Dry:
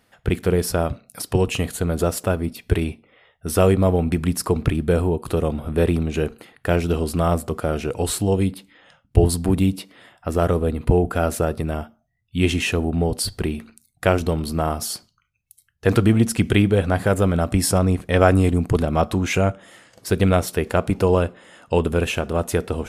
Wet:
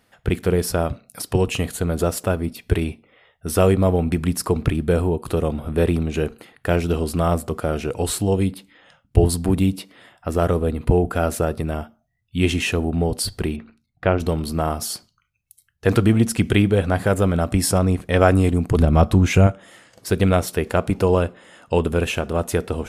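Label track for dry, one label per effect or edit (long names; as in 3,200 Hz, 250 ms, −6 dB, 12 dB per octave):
13.560000	14.200000	high-frequency loss of the air 300 metres
18.770000	19.470000	low-shelf EQ 180 Hz +11.5 dB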